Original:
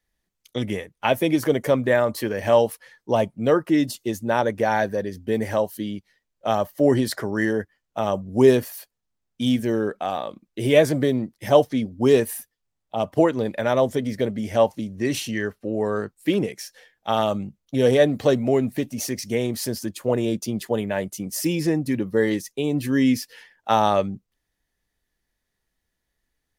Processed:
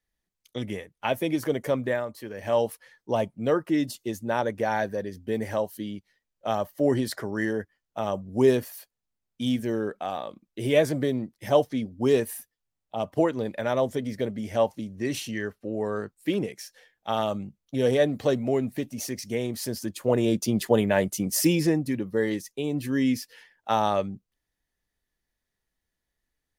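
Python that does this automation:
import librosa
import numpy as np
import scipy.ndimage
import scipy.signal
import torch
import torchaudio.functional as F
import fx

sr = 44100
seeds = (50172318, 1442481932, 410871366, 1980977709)

y = fx.gain(x, sr, db=fx.line((1.87, -6.0), (2.15, -14.5), (2.65, -5.0), (19.57, -5.0), (20.64, 3.0), (21.4, 3.0), (21.98, -5.0)))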